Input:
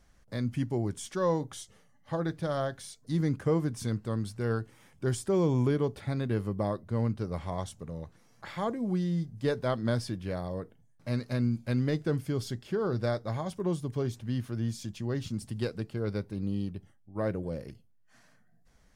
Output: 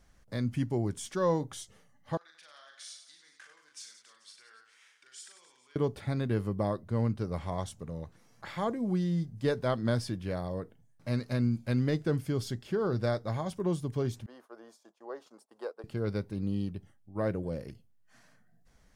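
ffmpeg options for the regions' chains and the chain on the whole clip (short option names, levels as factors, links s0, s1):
-filter_complex "[0:a]asettb=1/sr,asplit=3[s0][s1][s2];[s0]atrim=end=2.174[s3];[s1]atrim=start=2.17:end=5.76,asetpts=PTS-STARTPTS,afade=t=in:d=0.004:c=qsin,afade=t=out:st=3.586:d=0.004:c=qsin,acompressor=threshold=0.0126:ratio=10:attack=3.2:release=140:knee=1:detection=peak,asuperpass=centerf=3700:order=4:qfactor=0.62,aecho=1:1:40|96|174.4|284.2|437.8:0.631|0.398|0.251|0.158|0.1,atrim=end_sample=158319[s4];[s2]atrim=start=5.756[s5];[s3][s4]acrossfade=d=0.004:c1=hsin:c2=qsin[s6];[s6][s5]acrossfade=d=0.004:c1=qsin:c2=hsin,asettb=1/sr,asplit=3[s7][s8][s9];[s7]atrim=end=14.264[s10];[s8]atrim=start=14.26:end=15.84,asetpts=PTS-STARTPTS,afade=t=in:d=0.004:c=qsin,afade=t=out:st=1.576:d=0.004:c=qsin,agate=range=0.0224:threshold=0.0141:ratio=3:release=100:detection=peak,highpass=f=480:w=0.5412,highpass=f=480:w=1.3066,highshelf=f=1600:t=q:w=1.5:g=-13[s11];[s9]atrim=start=15.836[s12];[s10][s11]acrossfade=d=0.004:c1=hsin:c2=qsin[s13];[s13][s12]acrossfade=d=0.004:c1=qsin:c2=hsin"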